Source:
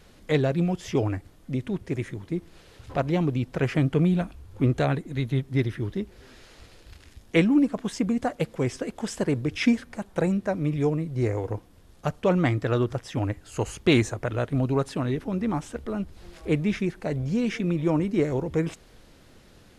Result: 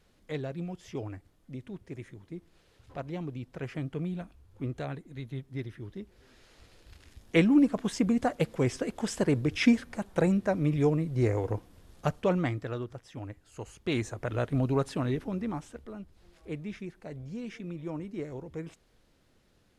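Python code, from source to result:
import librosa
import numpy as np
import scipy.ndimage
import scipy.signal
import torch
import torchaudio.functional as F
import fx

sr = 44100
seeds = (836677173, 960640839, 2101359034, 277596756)

y = fx.gain(x, sr, db=fx.line((5.81, -12.5), (7.64, -1.0), (12.06, -1.0), (12.89, -13.5), (13.75, -13.5), (14.37, -3.0), (15.15, -3.0), (16.02, -13.5)))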